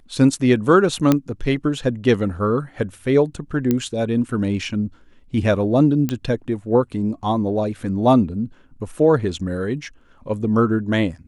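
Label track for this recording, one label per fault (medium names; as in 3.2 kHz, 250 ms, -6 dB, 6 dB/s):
1.120000	1.120000	pop -3 dBFS
3.710000	3.710000	pop -7 dBFS
6.090000	6.090000	pop -9 dBFS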